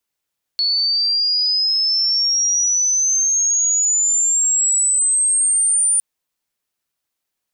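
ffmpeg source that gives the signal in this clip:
-f lavfi -i "aevalsrc='pow(10,(-15+2*t/5.41)/20)*sin(2*PI*4400*5.41/log(9300/4400)*(exp(log(9300/4400)*t/5.41)-1))':d=5.41:s=44100"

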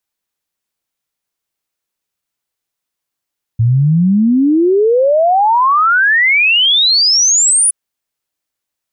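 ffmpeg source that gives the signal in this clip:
-f lavfi -i "aevalsrc='0.422*clip(min(t,4.12-t)/0.01,0,1)*sin(2*PI*110*4.12/log(10000/110)*(exp(log(10000/110)*t/4.12)-1))':d=4.12:s=44100"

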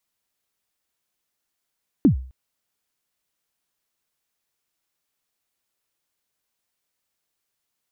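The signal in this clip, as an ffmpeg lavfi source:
-f lavfi -i "aevalsrc='0.398*pow(10,-3*t/0.44)*sin(2*PI*(330*0.106/log(64/330)*(exp(log(64/330)*min(t,0.106)/0.106)-1)+64*max(t-0.106,0)))':d=0.26:s=44100"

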